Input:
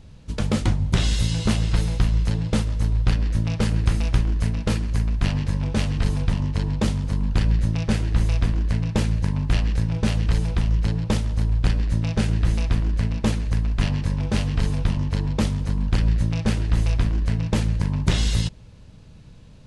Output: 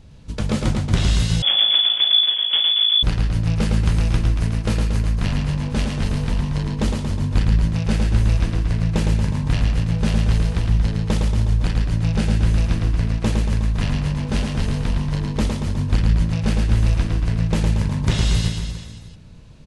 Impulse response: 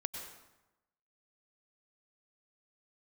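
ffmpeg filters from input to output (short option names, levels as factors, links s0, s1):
-filter_complex "[0:a]aecho=1:1:110|231|364.1|510.5|671.6:0.631|0.398|0.251|0.158|0.1,asettb=1/sr,asplit=3[s0][s1][s2];[s0]atrim=end=1.424[s3];[s1]atrim=start=1.42:end=3.03,asetpts=PTS-STARTPTS,afade=t=in:d=0.004:c=qsin,afade=t=out:st=1.606:d=0.004:c=qsin,lowpass=f=3000:t=q:w=0.5098,lowpass=f=3000:t=q:w=0.6013,lowpass=f=3000:t=q:w=0.9,lowpass=f=3000:t=q:w=2.563,afreqshift=-3500[s4];[s2]atrim=start=3.026[s5];[s3][s4]acrossfade=d=0.004:c1=hsin:c2=qsin[s6];[s6][s5]acrossfade=d=0.004:c1=qsin:c2=hsin"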